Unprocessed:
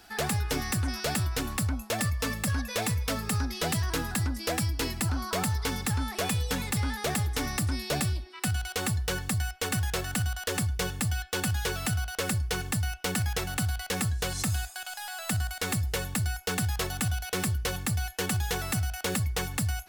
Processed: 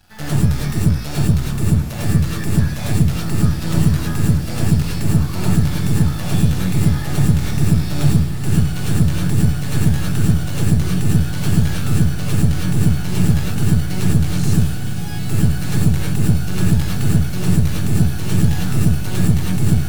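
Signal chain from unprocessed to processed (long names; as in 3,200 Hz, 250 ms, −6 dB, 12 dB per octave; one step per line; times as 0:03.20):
floating-point word with a short mantissa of 2 bits
low shelf with overshoot 230 Hz +10.5 dB, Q 3
half-wave rectification
feedback delay with all-pass diffusion 1,382 ms, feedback 77%, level −10 dB
reverb whose tail is shaped and stops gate 130 ms rising, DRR −5.5 dB
level −1 dB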